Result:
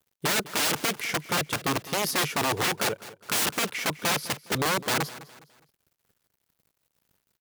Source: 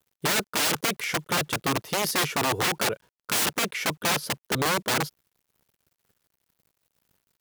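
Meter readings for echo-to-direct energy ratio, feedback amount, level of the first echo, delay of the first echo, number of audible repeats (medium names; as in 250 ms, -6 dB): -16.5 dB, 36%, -17.0 dB, 206 ms, 3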